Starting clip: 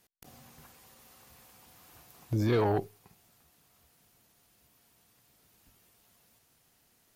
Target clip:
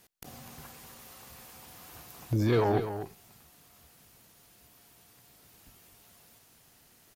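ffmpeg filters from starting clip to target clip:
ffmpeg -i in.wav -filter_complex "[0:a]asplit=2[link_01][link_02];[link_02]acompressor=threshold=-43dB:ratio=6,volume=1.5dB[link_03];[link_01][link_03]amix=inputs=2:normalize=0,aecho=1:1:249:0.316" out.wav

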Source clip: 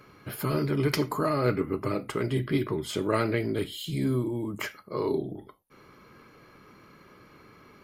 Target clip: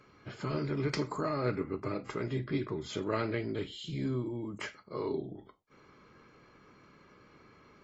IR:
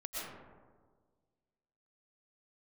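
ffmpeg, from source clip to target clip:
-filter_complex "[0:a]asettb=1/sr,asplit=3[link_01][link_02][link_03];[link_01]atrim=end=0.694[link_04];[link_02]atrim=start=0.69:end=2.92,asetpts=PTS-STARTPTS,afade=type=in:duration=0.004:curve=qsin,afade=type=out:start_time=2.226:duration=0.004:curve=qsin,bandreject=frequency=3000:width=7.9[link_05];[link_03]atrim=start=2.916[link_06];[link_04][link_05]acrossfade=duration=0.004:curve1=hsin:curve2=qsin[link_07];[link_07][link_06]acrossfade=duration=0.004:curve1=qsin:curve2=hsin,volume=-6.5dB" -ar 24000 -c:a aac -b:a 24k

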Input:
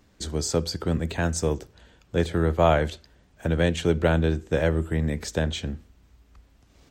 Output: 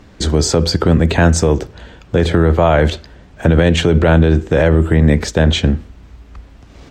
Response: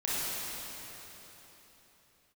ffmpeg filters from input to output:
-filter_complex "[0:a]asettb=1/sr,asplit=3[link_01][link_02][link_03];[link_01]atrim=end=5.014[link_04];[link_02]atrim=start=5.01:end=5.64,asetpts=PTS-STARTPTS,afade=type=in:duration=0.004:curve=qsin,afade=type=out:start_time=0.626:duration=0.004:curve=qsin,agate=range=-33dB:threshold=-31dB:ratio=3:detection=peak[link_05];[link_03]atrim=start=5.636[link_06];[link_04][link_05]acrossfade=duration=0.004:curve1=hsin:curve2=qsin[link_07];[link_07][link_06]acrossfade=duration=0.004:curve1=qsin:curve2=hsin,aemphasis=mode=reproduction:type=50kf,alimiter=level_in=18.5dB:limit=-1dB:release=50:level=0:latency=1,volume=-1dB"

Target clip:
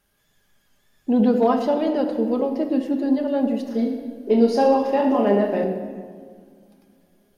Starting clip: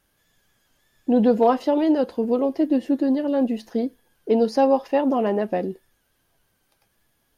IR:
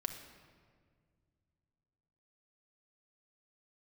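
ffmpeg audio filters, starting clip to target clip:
-filter_complex "[0:a]asettb=1/sr,asplit=3[link_01][link_02][link_03];[link_01]atrim=end=3.644[link_04];[link_02]atrim=start=3.64:end=5.64,asetpts=PTS-STARTPTS,afade=type=in:duration=0.004:curve=qsin,afade=type=out:start_time=1.996:duration=0.004:curve=qsin,aecho=1:1:30|69|119.7|185.6|271.3:0.631|0.398|0.251|0.158|0.1,atrim=end_sample=88200[link_05];[link_03]atrim=start=5.636[link_06];[link_04][link_05]acrossfade=duration=0.004:curve1=hsin:curve2=qsin[link_07];[link_07][link_06]acrossfade=duration=0.004:curve1=qsin:curve2=hsin[link_08];[1:a]atrim=start_sample=2205[link_09];[link_08][link_09]afir=irnorm=-1:irlink=0"

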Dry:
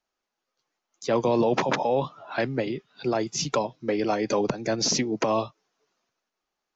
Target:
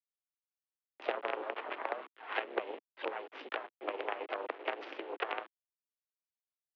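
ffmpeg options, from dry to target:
ffmpeg -i in.wav -filter_complex "[0:a]acompressor=threshold=-38dB:ratio=10,asplit=3[link_01][link_02][link_03];[link_02]asetrate=52444,aresample=44100,atempo=0.840896,volume=-11dB[link_04];[link_03]asetrate=55563,aresample=44100,atempo=0.793701,volume=-3dB[link_05];[link_01][link_04][link_05]amix=inputs=3:normalize=0,aeval=exprs='0.075*(cos(1*acos(clip(val(0)/0.075,-1,1)))-cos(1*PI/2))+0.0188*(cos(3*acos(clip(val(0)/0.075,-1,1)))-cos(3*PI/2))':channel_layout=same,acrusher=bits=7:dc=4:mix=0:aa=0.000001,highpass=frequency=250:width_type=q:width=0.5412,highpass=frequency=250:width_type=q:width=1.307,lowpass=frequency=3000:width_type=q:width=0.5176,lowpass=frequency=3000:width_type=q:width=0.7071,lowpass=frequency=3000:width_type=q:width=1.932,afreqshift=81,volume=13.5dB" out.wav

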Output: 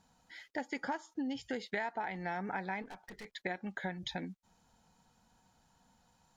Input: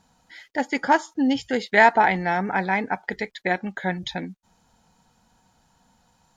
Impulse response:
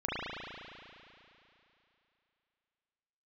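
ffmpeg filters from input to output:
-filter_complex "[0:a]acompressor=threshold=-27dB:ratio=10,asettb=1/sr,asplit=3[link_01][link_02][link_03];[link_01]atrim=end=2.824[link_04];[link_02]atrim=start=2.82:end=3.25,asetpts=PTS-STARTPTS,afade=type=in:duration=0.004:curve=qsin,afade=type=out:start_time=0.426:duration=0.004:curve=qsin,aeval=exprs='(tanh(79.4*val(0)+0.4)-tanh(0.4))/79.4':channel_layout=same[link_05];[link_03]atrim=start=3.246[link_06];[link_04][link_05]acrossfade=duration=0.004:curve1=hsin:curve2=qsin[link_07];[link_07][link_06]acrossfade=duration=0.004:curve1=qsin:curve2=hsin,volume=-7dB"

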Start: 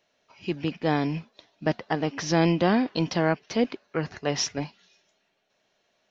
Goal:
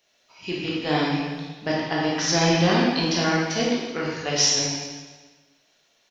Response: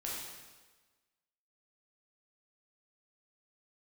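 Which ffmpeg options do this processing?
-filter_complex "[0:a]highshelf=frequency=2400:gain=12,asplit=2[link_01][link_02];[link_02]adelay=390,highpass=300,lowpass=3400,asoftclip=type=hard:threshold=-18.5dB,volume=-21dB[link_03];[link_01][link_03]amix=inputs=2:normalize=0[link_04];[1:a]atrim=start_sample=2205[link_05];[link_04][link_05]afir=irnorm=-1:irlink=0"

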